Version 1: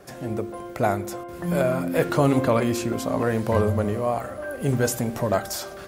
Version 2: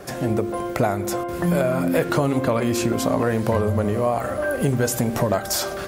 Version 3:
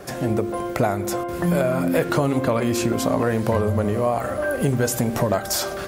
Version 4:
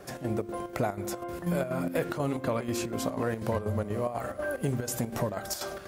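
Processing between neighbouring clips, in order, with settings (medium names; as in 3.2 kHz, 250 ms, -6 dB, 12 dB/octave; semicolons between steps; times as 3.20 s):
compression, threshold -26 dBFS, peak gain reduction 11.5 dB; trim +9 dB
bit crusher 12-bit
square tremolo 4.1 Hz, depth 60%, duty 70%; trim -8.5 dB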